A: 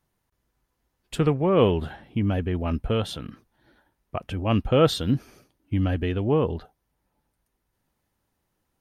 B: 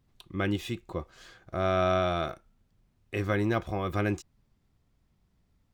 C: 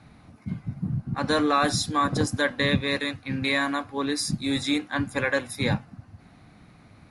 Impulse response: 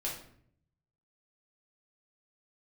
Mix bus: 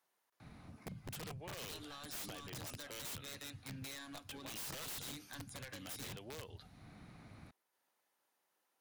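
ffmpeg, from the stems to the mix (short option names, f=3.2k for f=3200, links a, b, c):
-filter_complex "[0:a]highpass=550,asoftclip=type=tanh:threshold=-16dB,volume=-3dB[a];[2:a]acompressor=threshold=-30dB:ratio=8,asoftclip=type=hard:threshold=-29dB,adelay=400,volume=-4.5dB[b];[a][b]amix=inputs=2:normalize=0,acrossover=split=150|3200[c][d][e];[c]acompressor=threshold=-48dB:ratio=4[f];[d]acompressor=threshold=-54dB:ratio=4[g];[e]acompressor=threshold=-39dB:ratio=4[h];[f][g][h]amix=inputs=3:normalize=0,aeval=exprs='(mod(94.4*val(0)+1,2)-1)/94.4':c=same"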